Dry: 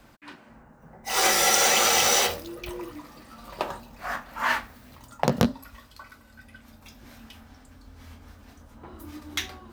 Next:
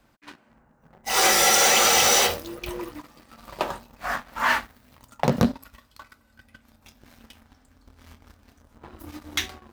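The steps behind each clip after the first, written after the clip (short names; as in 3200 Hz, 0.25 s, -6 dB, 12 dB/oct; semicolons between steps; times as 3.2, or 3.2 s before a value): sample leveller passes 2; gain -4 dB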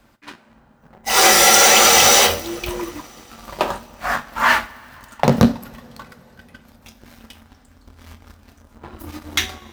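two-slope reverb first 0.4 s, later 4.3 s, from -20 dB, DRR 12.5 dB; gain +6.5 dB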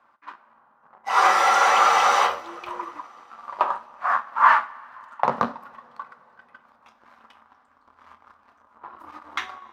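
band-pass 1100 Hz, Q 3.4; gain +5 dB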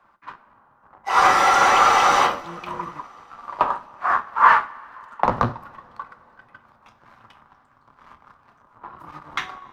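octaver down 1 oct, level +2 dB; gain +2 dB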